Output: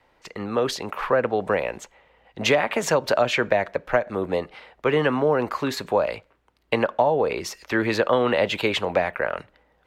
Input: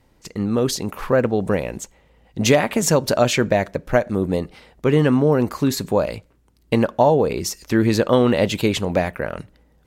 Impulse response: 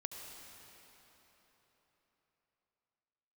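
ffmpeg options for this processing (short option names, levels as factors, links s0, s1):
-filter_complex "[0:a]acrossover=split=490 3600:gain=0.158 1 0.158[s0][s1][s2];[s0][s1][s2]amix=inputs=3:normalize=0,acrossover=split=330[s3][s4];[s4]acompressor=threshold=0.0794:ratio=5[s5];[s3][s5]amix=inputs=2:normalize=0,volume=1.68"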